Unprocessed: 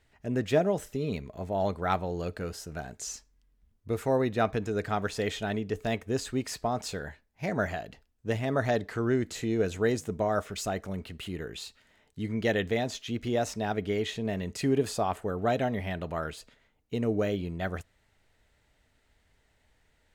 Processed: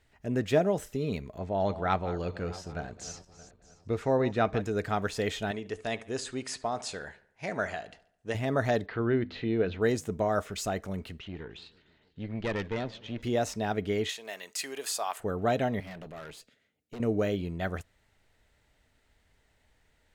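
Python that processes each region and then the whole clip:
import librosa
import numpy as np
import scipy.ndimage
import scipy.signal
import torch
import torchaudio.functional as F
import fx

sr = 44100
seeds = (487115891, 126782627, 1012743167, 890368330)

y = fx.chain(x, sr, fx.reverse_delay_fb(ms=312, feedback_pct=50, wet_db=-14),
    fx.lowpass(hz=5500.0, slope=12), at=(1.38, 4.62))
y = fx.chain(y, sr, fx.brickwall_lowpass(high_hz=11000.0),
    fx.low_shelf(hz=310.0, db=-10.5),
    fx.echo_filtered(ms=71, feedback_pct=51, hz=4400.0, wet_db=-18.0), at=(5.51, 8.35))
y = fx.chain(y, sr, fx.steep_lowpass(hz=4100.0, slope=36),
    fx.hum_notches(base_hz=50, count=5), at=(8.86, 9.82))
y = fx.chain(y, sr, fx.lowpass(hz=4000.0, slope=24),
    fx.tube_stage(drive_db=25.0, bias=0.75),
    fx.echo_warbled(ms=151, feedback_pct=72, rate_hz=2.8, cents=157, wet_db=-22.5), at=(11.19, 13.22))
y = fx.chain(y, sr, fx.highpass(hz=850.0, slope=12),
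    fx.high_shelf(hz=5200.0, db=9.0), at=(14.09, 15.2))
y = fx.chain(y, sr, fx.highpass(hz=120.0, slope=12),
    fx.peak_eq(hz=960.0, db=-11.5, octaves=0.63),
    fx.tube_stage(drive_db=38.0, bias=0.7), at=(15.8, 17.0))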